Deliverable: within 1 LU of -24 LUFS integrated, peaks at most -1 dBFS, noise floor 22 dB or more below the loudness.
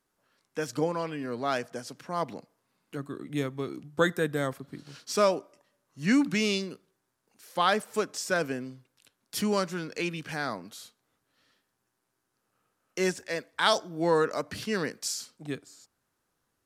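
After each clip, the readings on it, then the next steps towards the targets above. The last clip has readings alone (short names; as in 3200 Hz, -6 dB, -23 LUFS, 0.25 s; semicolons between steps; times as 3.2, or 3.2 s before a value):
loudness -30.0 LUFS; peak -8.0 dBFS; loudness target -24.0 LUFS
-> gain +6 dB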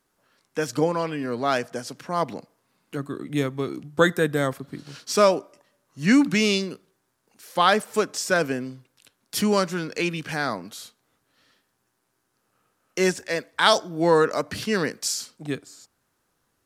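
loudness -24.0 LUFS; peak -2.0 dBFS; noise floor -73 dBFS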